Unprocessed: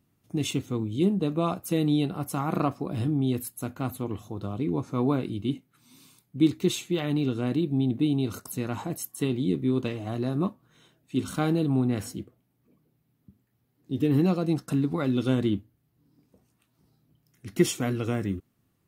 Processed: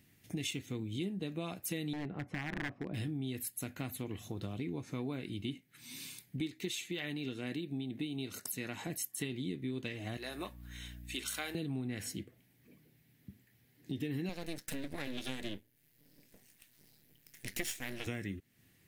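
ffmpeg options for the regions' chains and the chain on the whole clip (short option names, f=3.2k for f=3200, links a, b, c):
-filter_complex "[0:a]asettb=1/sr,asplit=3[a][b][c];[a]atrim=end=1.934[d];[b]atrim=start=1.93:end=2.94,asetpts=PTS-STARTPTS,afade=t=in:d=0.004:c=qsin,afade=t=out:st=1.006:d=0.004:c=qsin,lowpass=1.3k,aeval=exprs='0.0841*(abs(mod(val(0)/0.0841+3,4)-2)-1)':c=same[e];[c]atrim=start=2.936[f];[d][e]acrossfade=d=0.004:c1=hsin:c2=qsin[g];[g][f]acrossfade=d=0.004:c1=qsin:c2=hsin,asettb=1/sr,asplit=3[h][i][j];[h]atrim=end=6.404[k];[i]atrim=start=6.4:end=8.87,asetpts=PTS-STARTPTS,afade=t=in:d=0.004:c=qsin,afade=t=out:st=2.466:d=0.004:c=qsin,highpass=f=180:p=1,tremolo=f=4.4:d=0.28[l];[j]atrim=start=8.866[m];[k][l]acrossfade=d=0.004:c1=hsin:c2=qsin[n];[n][m]acrossfade=d=0.004:c1=qsin:c2=hsin,asettb=1/sr,asplit=3[o][p][q];[o]atrim=end=10.174[r];[p]atrim=start=10.17:end=11.55,asetpts=PTS-STARTPTS,afade=t=in:d=0.004:c=qsin,afade=t=out:st=1.376:d=0.004:c=qsin,highpass=610,highshelf=f=11k:g=8.5,aeval=exprs='val(0)+0.00316*(sin(2*PI*60*n/s)+sin(2*PI*2*60*n/s)/2+sin(2*PI*3*60*n/s)/3+sin(2*PI*4*60*n/s)/4+sin(2*PI*5*60*n/s)/5)':c=same[s];[q]atrim=start=11.546[t];[r][s]acrossfade=d=0.004:c1=hsin:c2=qsin[u];[u][t]acrossfade=d=0.004:c1=qsin:c2=hsin,asettb=1/sr,asplit=3[v][w][x];[v]atrim=end=14.294[y];[w]atrim=start=14.29:end=18.07,asetpts=PTS-STARTPTS,afade=t=in:d=0.004:c=qsin,afade=t=out:st=3.776:d=0.004:c=qsin,highpass=130,highshelf=f=5k:g=8.5,aeval=exprs='max(val(0),0)':c=same[z];[x]atrim=start=18.066[aa];[y][z]acrossfade=d=0.004:c1=hsin:c2=qsin[ab];[ab][aa]acrossfade=d=0.004:c1=qsin:c2=hsin,highshelf=f=1.5k:t=q:w=3:g=6.5,acompressor=threshold=-41dB:ratio=4,volume=2.5dB"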